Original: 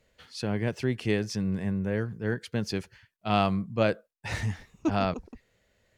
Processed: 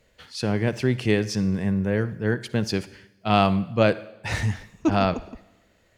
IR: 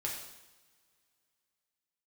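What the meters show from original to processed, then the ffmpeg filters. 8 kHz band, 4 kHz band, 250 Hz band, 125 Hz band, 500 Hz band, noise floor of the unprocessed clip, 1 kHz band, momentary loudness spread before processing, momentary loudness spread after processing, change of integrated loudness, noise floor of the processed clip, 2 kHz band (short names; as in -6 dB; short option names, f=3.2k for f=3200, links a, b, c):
+5.5 dB, +5.5 dB, +5.5 dB, +5.5 dB, +5.5 dB, -74 dBFS, +5.5 dB, 9 LU, 10 LU, +5.5 dB, -62 dBFS, +5.5 dB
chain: -filter_complex "[0:a]asplit=2[a][b];[1:a]atrim=start_sample=2205,adelay=56[c];[b][c]afir=irnorm=-1:irlink=0,volume=-18dB[d];[a][d]amix=inputs=2:normalize=0,volume=5.5dB"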